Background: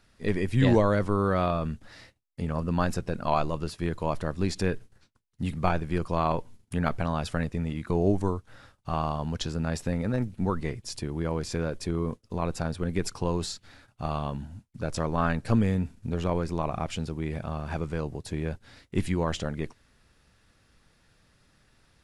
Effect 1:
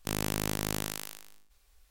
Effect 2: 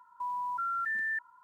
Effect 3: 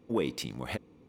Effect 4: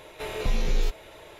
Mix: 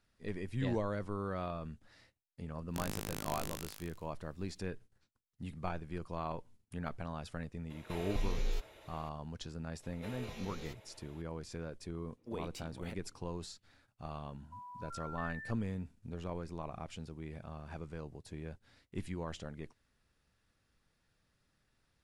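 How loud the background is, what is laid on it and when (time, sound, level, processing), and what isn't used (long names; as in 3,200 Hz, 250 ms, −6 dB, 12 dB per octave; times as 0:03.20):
background −13.5 dB
0:02.69: mix in 1 −10 dB
0:07.70: mix in 4 −10.5 dB
0:09.83: mix in 4 −14 dB + high-pass filter 81 Hz
0:12.17: mix in 3 −13 dB
0:14.32: mix in 2 −15 dB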